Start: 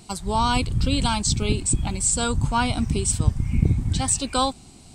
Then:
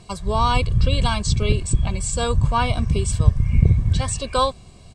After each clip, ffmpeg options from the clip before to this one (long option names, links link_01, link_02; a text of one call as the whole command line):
ffmpeg -i in.wav -af "aemphasis=mode=reproduction:type=50fm,aecho=1:1:1.8:0.66,volume=1.5dB" out.wav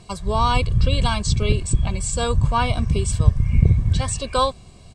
ffmpeg -i in.wav -af anull out.wav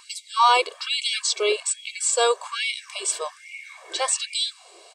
ffmpeg -i in.wav -af "afftfilt=real='re*gte(b*sr/1024,320*pow(2100/320,0.5+0.5*sin(2*PI*1.2*pts/sr)))':imag='im*gte(b*sr/1024,320*pow(2100/320,0.5+0.5*sin(2*PI*1.2*pts/sr)))':win_size=1024:overlap=0.75,volume=4.5dB" out.wav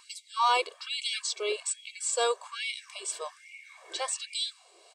ffmpeg -i in.wav -filter_complex "[0:a]asplit=2[link_01][link_02];[link_02]volume=13dB,asoftclip=hard,volume=-13dB,volume=-10.5dB[link_03];[link_01][link_03]amix=inputs=2:normalize=0,tremolo=f=1.8:d=0.31,volume=-9dB" out.wav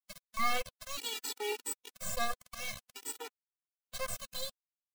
ffmpeg -i in.wav -af "acrusher=bits=3:dc=4:mix=0:aa=0.000001,afftfilt=real='re*gt(sin(2*PI*0.51*pts/sr)*(1-2*mod(floor(b*sr/1024/250),2)),0)':imag='im*gt(sin(2*PI*0.51*pts/sr)*(1-2*mod(floor(b*sr/1024/250),2)),0)':win_size=1024:overlap=0.75" out.wav